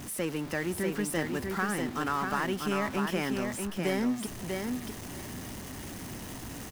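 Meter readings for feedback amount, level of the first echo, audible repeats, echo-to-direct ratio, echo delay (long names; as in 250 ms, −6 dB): 15%, −4.5 dB, 2, −4.5 dB, 643 ms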